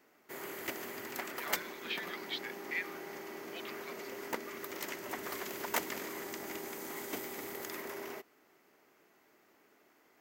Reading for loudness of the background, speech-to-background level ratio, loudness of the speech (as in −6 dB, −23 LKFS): −41.0 LKFS, −1.5 dB, −42.5 LKFS